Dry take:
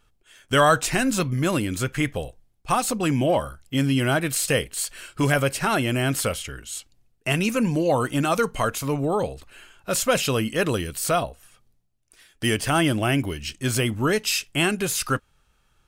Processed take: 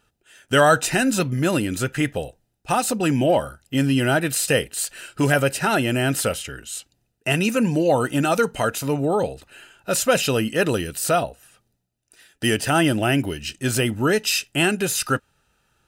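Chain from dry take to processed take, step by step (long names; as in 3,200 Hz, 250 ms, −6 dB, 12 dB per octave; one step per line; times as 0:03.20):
notch comb filter 1,100 Hz
level +3 dB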